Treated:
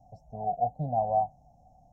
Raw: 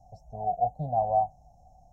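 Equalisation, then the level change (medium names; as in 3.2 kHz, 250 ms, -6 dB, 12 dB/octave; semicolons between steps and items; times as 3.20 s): ten-band graphic EQ 125 Hz +5 dB, 250 Hz +10 dB, 500 Hz +4 dB, 1 kHz +4 dB; -6.5 dB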